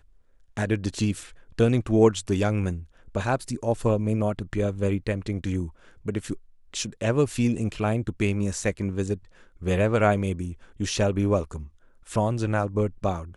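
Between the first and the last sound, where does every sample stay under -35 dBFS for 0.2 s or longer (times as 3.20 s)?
1.26–1.59 s
2.82–3.15 s
5.69–6.06 s
6.36–6.74 s
9.16–9.62 s
10.53–10.80 s
11.66–12.09 s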